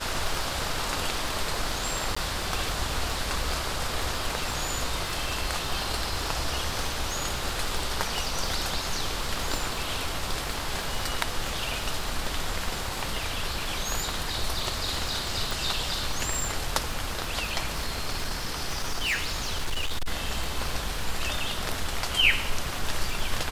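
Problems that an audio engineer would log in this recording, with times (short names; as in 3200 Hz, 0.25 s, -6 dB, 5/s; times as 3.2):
crackle 63/s -31 dBFS
2.15–2.17 gap 15 ms
15.51 pop
17.73–20.07 clipped -23.5 dBFS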